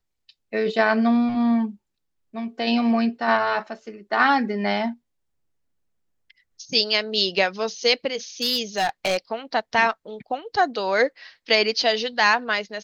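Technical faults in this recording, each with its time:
0:08.42–0:09.17: clipping −17 dBFS

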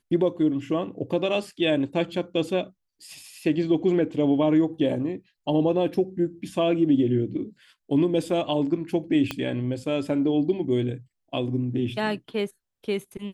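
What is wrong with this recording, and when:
0:09.31: click −13 dBFS

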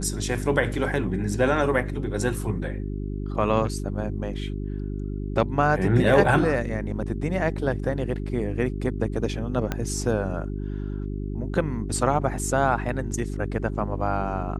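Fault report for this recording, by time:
mains hum 50 Hz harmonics 8 −30 dBFS
0:09.72: click −12 dBFS

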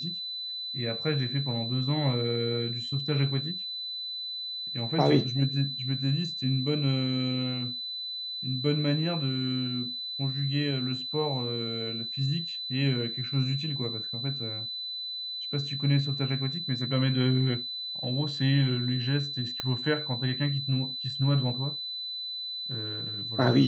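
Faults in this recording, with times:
whistle 4,000 Hz −33 dBFS
0:19.60: click −16 dBFS

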